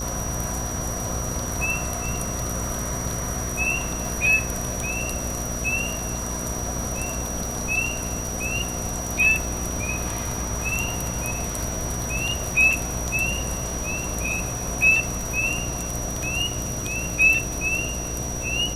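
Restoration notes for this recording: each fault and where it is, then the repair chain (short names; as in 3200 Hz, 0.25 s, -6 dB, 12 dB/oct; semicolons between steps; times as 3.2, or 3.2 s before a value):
buzz 60 Hz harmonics 12 -32 dBFS
crackle 35/s -32 dBFS
tone 5800 Hz -31 dBFS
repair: de-click; de-hum 60 Hz, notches 12; notch 5800 Hz, Q 30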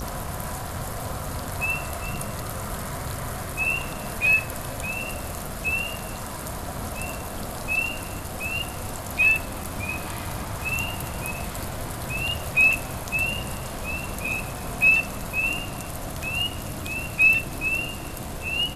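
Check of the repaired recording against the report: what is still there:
none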